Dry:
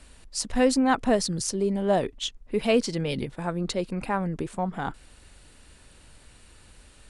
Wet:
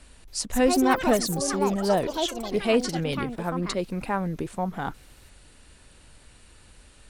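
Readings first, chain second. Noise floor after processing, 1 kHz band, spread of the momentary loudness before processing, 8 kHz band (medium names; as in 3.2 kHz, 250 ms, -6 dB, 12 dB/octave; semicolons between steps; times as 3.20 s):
-53 dBFS, +2.0 dB, 9 LU, +1.0 dB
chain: ever faster or slower copies 278 ms, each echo +6 st, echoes 3, each echo -6 dB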